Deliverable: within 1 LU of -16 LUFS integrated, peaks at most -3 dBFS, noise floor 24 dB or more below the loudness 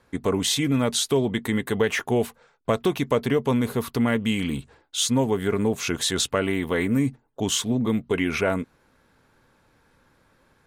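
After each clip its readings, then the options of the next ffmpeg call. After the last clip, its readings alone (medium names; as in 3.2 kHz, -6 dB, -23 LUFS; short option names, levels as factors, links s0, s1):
loudness -24.5 LUFS; peak level -8.5 dBFS; loudness target -16.0 LUFS
-> -af "volume=2.66,alimiter=limit=0.708:level=0:latency=1"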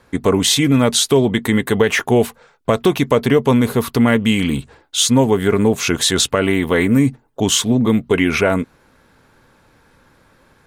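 loudness -16.0 LUFS; peak level -3.0 dBFS; noise floor -55 dBFS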